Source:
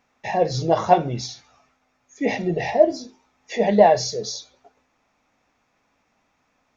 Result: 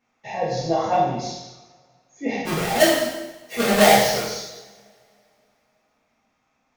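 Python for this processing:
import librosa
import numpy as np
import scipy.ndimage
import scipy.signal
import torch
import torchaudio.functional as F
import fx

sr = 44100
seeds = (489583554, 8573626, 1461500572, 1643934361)

y = fx.halfwave_hold(x, sr, at=(2.45, 4.23))
y = fx.rev_double_slope(y, sr, seeds[0], early_s=0.96, late_s=3.1, knee_db=-28, drr_db=-8.0)
y = F.gain(torch.from_numpy(y), -10.5).numpy()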